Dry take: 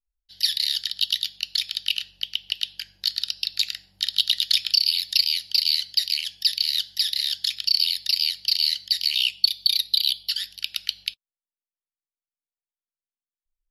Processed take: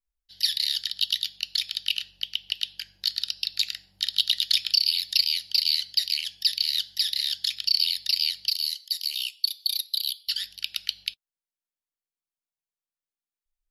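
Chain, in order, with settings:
0:08.50–0:10.28: first difference
level −2 dB

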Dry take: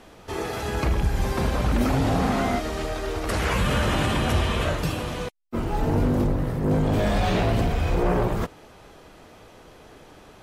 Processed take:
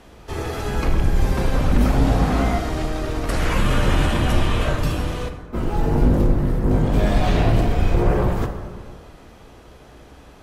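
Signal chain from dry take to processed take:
sub-octave generator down 2 octaves, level +4 dB
dense smooth reverb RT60 1.8 s, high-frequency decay 0.45×, DRR 5.5 dB

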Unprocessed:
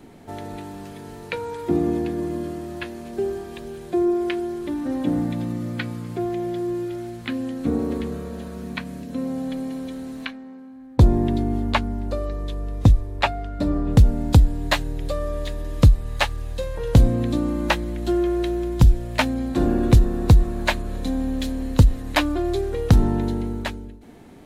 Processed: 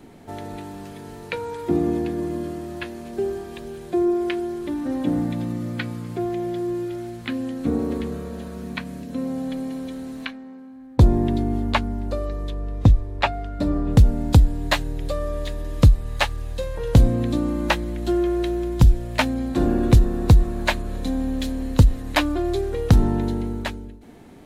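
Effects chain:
0:12.49–0:13.32: high-shelf EQ 5,100 Hz → 9,200 Hz −10 dB

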